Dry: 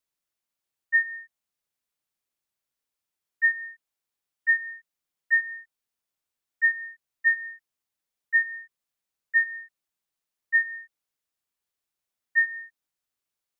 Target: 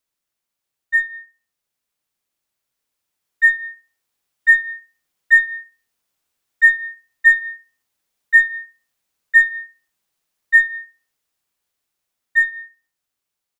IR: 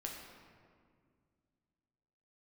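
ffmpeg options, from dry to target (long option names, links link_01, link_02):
-filter_complex "[0:a]asplit=2[link_01][link_02];[link_02]adelay=67,lowpass=frequency=2000:poles=1,volume=-11dB,asplit=2[link_03][link_04];[link_04]adelay=67,lowpass=frequency=2000:poles=1,volume=0.33,asplit=2[link_05][link_06];[link_06]adelay=67,lowpass=frequency=2000:poles=1,volume=0.33,asplit=2[link_07][link_08];[link_08]adelay=67,lowpass=frequency=2000:poles=1,volume=0.33[link_09];[link_01][link_03][link_05][link_07][link_09]amix=inputs=5:normalize=0,aeval=exprs='0.224*(cos(1*acos(clip(val(0)/0.224,-1,1)))-cos(1*PI/2))+0.00282*(cos(8*acos(clip(val(0)/0.224,-1,1)))-cos(8*PI/2))':channel_layout=same,dynaudnorm=framelen=880:gausssize=7:maxgain=6dB,volume=4.5dB"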